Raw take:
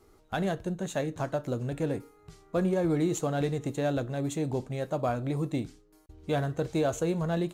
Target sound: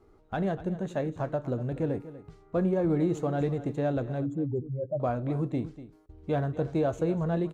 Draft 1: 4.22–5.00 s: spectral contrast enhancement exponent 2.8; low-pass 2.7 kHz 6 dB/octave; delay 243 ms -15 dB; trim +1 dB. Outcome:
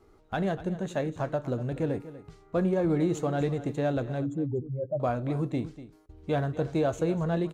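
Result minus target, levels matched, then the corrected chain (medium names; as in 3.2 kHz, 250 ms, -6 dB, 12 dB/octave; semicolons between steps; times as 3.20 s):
2 kHz band +3.0 dB
4.22–5.00 s: spectral contrast enhancement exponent 2.8; low-pass 1.2 kHz 6 dB/octave; delay 243 ms -15 dB; trim +1 dB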